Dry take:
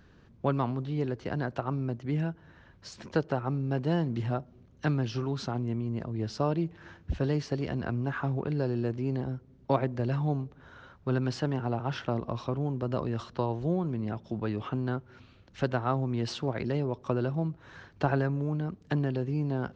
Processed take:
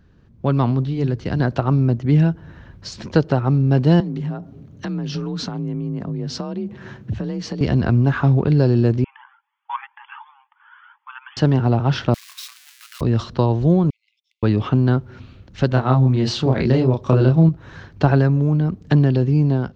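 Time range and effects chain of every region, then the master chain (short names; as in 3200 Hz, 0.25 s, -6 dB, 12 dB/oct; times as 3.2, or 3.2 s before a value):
0.84–1.4 bell 640 Hz -5 dB 2.9 oct + notches 50/100/150 Hz
4–7.61 notch 5000 Hz, Q 29 + compressor 5:1, threshold -37 dBFS + frequency shift +36 Hz
9.04–11.37 brick-wall FIR band-pass 800–3500 Hz + cascading flanger rising 2 Hz
12.14–13.01 switching spikes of -29 dBFS + steep high-pass 1600 Hz + tilt -2.5 dB/oct
13.9–14.43 gate -42 dBFS, range -19 dB + compressor 8:1, threshold -47 dBFS + brick-wall FIR high-pass 2000 Hz
15.69–17.49 notch 5300 Hz, Q 18 + doubler 31 ms -3 dB
whole clip: dynamic EQ 4400 Hz, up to +6 dB, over -57 dBFS, Q 1.2; AGC gain up to 12 dB; low shelf 290 Hz +9 dB; gain -3 dB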